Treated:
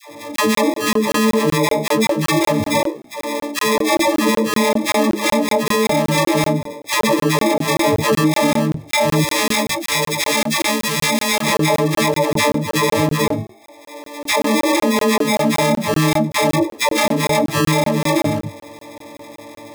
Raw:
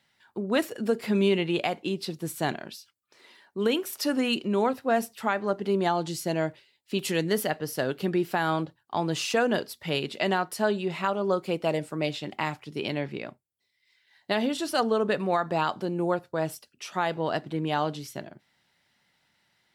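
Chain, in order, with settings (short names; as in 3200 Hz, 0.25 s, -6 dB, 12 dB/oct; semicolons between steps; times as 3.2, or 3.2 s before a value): frequency quantiser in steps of 6 st; flange 0.49 Hz, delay 9.9 ms, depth 4.4 ms, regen +82%; spectral gate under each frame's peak -30 dB strong; bell 100 Hz +14.5 dB 0.63 oct; sample-and-hold 30×; 9.14–11.4 passive tone stack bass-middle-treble 5-5-5; dispersion lows, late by 0.108 s, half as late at 590 Hz; compressor 20:1, threshold -39 dBFS, peak gain reduction 19.5 dB; crackling interface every 0.19 s, samples 1024, zero, from 0.36; maximiser +33 dB; slew limiter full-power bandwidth 1700 Hz; gain -5 dB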